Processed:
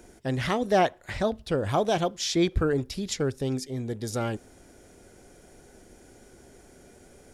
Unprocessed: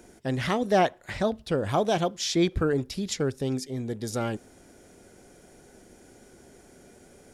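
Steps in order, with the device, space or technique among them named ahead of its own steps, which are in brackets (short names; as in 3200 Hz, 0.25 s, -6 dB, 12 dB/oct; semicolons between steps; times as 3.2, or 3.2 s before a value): low shelf boost with a cut just above (low shelf 79 Hz +6.5 dB; bell 190 Hz -2.5 dB 0.89 oct)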